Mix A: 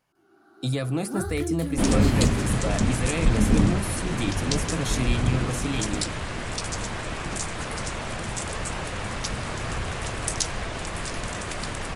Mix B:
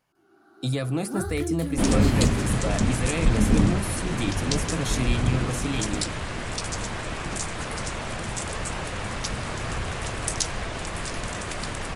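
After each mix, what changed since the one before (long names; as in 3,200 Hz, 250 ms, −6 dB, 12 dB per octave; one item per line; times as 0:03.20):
nothing changed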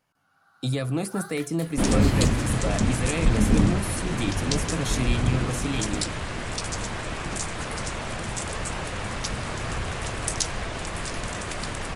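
first sound: add Butterworth high-pass 840 Hz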